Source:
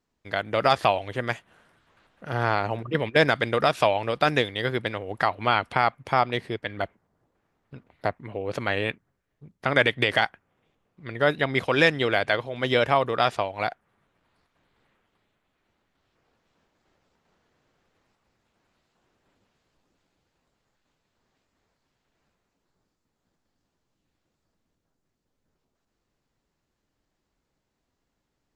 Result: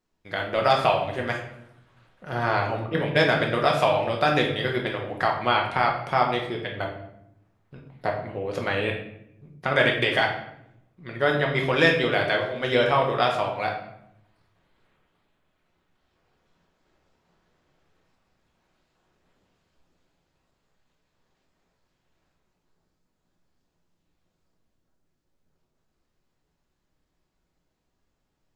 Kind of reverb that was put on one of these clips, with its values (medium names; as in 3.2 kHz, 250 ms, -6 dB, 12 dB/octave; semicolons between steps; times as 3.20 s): simulated room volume 200 m³, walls mixed, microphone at 1 m; trim -2.5 dB